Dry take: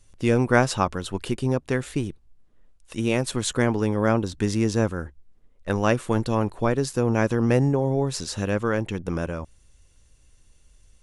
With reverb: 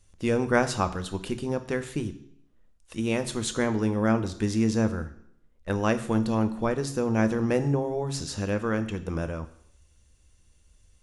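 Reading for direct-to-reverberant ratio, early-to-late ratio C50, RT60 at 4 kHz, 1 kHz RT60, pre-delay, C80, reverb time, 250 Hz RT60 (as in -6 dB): 10.0 dB, 14.0 dB, 0.70 s, 0.70 s, 7 ms, 16.5 dB, 0.70 s, 0.70 s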